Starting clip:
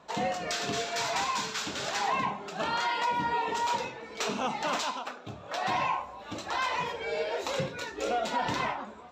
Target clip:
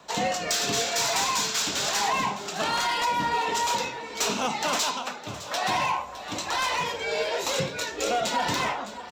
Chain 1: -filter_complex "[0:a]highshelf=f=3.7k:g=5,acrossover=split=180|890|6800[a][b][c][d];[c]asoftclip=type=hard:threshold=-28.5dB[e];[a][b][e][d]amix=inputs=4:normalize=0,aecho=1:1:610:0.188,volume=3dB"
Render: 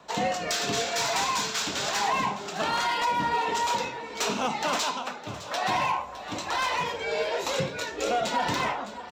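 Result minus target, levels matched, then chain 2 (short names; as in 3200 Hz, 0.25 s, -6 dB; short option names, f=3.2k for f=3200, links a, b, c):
8000 Hz band -3.5 dB
-filter_complex "[0:a]highshelf=f=3.7k:g=12,acrossover=split=180|890|6800[a][b][c][d];[c]asoftclip=type=hard:threshold=-28.5dB[e];[a][b][e][d]amix=inputs=4:normalize=0,aecho=1:1:610:0.188,volume=3dB"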